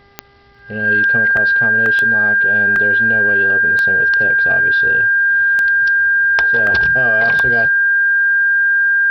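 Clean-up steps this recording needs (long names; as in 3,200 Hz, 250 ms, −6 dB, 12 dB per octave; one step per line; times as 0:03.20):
click removal
hum removal 400.6 Hz, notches 5
notch filter 1,600 Hz, Q 30
repair the gap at 0:00.59/0:01.37/0:01.86/0:02.76/0:06.67, 1.6 ms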